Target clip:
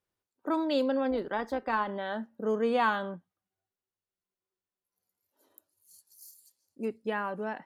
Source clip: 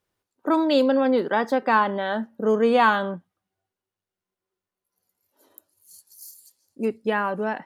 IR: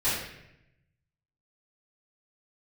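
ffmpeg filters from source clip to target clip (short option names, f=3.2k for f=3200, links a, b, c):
-filter_complex "[0:a]asplit=3[a][b][c];[a]afade=t=out:st=1.1:d=0.02[d];[b]tremolo=f=200:d=0.4,afade=t=in:st=1.1:d=0.02,afade=t=out:st=1.87:d=0.02[e];[c]afade=t=in:st=1.87:d=0.02[f];[d][e][f]amix=inputs=3:normalize=0,volume=-8.5dB"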